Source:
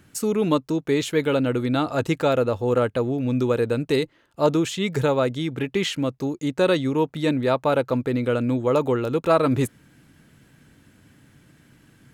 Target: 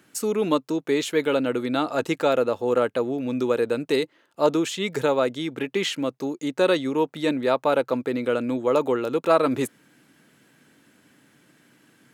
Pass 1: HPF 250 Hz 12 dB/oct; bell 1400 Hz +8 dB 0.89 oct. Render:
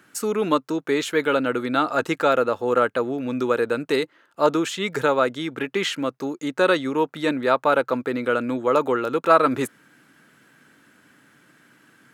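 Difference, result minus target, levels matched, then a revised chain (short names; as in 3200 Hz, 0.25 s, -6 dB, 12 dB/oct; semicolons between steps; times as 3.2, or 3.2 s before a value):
1000 Hz band +3.5 dB
HPF 250 Hz 12 dB/oct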